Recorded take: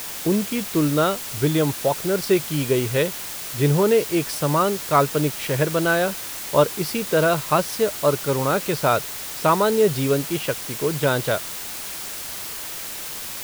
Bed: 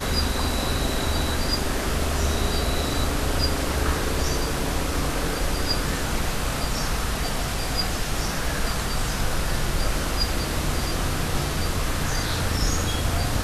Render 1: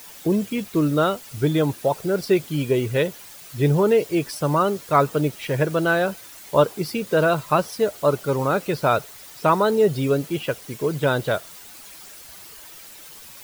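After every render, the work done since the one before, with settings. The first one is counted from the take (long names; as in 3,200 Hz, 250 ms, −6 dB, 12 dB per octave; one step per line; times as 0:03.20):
broadband denoise 12 dB, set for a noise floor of −32 dBFS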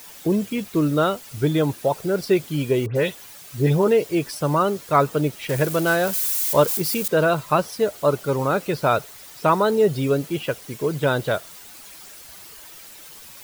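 0:02.86–0:03.88: all-pass dispersion highs, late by 97 ms, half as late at 2,500 Hz
0:05.49–0:07.08: spike at every zero crossing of −20.5 dBFS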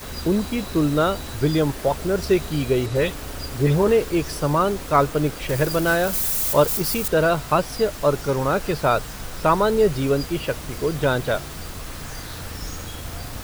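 mix in bed −9.5 dB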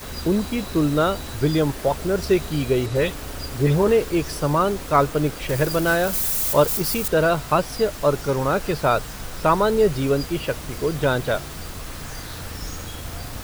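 no processing that can be heard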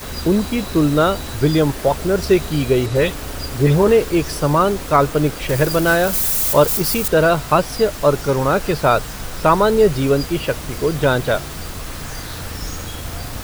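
level +4.5 dB
brickwall limiter −1 dBFS, peak gain reduction 2 dB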